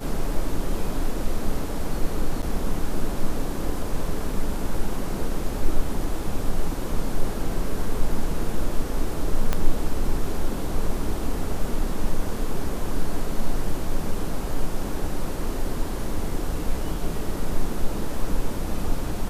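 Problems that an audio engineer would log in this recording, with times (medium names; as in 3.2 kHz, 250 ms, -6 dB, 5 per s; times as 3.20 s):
2.42–2.43 s: dropout 7.8 ms
9.53 s: pop -9 dBFS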